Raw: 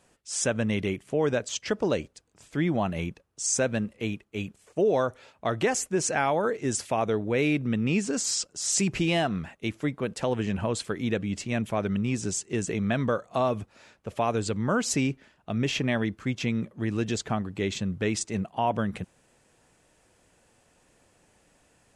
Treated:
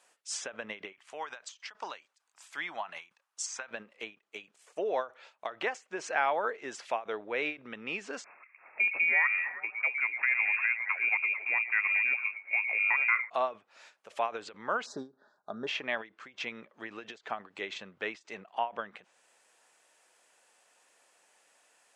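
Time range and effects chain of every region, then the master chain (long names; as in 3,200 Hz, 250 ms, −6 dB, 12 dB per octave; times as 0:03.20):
0:00.92–0:03.71: high-pass filter 50 Hz + low shelf with overshoot 680 Hz −9.5 dB, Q 1.5
0:08.24–0:13.30: echo through a band-pass that steps 110 ms, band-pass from 390 Hz, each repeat 0.7 octaves, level −4.5 dB + voice inversion scrambler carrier 2,600 Hz
0:14.86–0:15.67: elliptic band-stop filter 1,600–3,800 Hz + spectral tilt −2 dB per octave + comb filter 4.9 ms, depth 34%
whole clip: treble cut that deepens with the level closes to 2,900 Hz, closed at −26 dBFS; high-pass filter 730 Hz 12 dB per octave; every ending faded ahead of time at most 230 dB per second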